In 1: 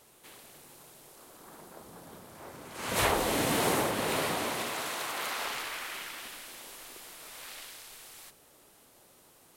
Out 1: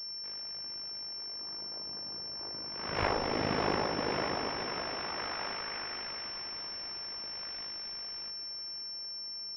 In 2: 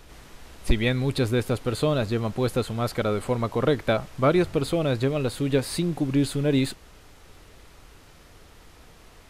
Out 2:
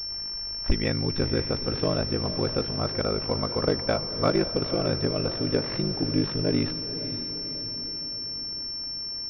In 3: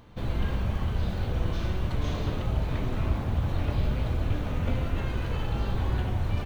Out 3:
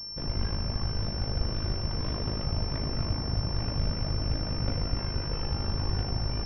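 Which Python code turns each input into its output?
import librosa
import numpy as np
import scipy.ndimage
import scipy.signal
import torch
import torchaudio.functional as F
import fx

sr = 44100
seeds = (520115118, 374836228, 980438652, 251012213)

y = x * np.sin(2.0 * np.pi * 26.0 * np.arange(len(x)) / sr)
y = fx.echo_diffused(y, sr, ms=523, feedback_pct=55, wet_db=-11.0)
y = fx.pwm(y, sr, carrier_hz=5400.0)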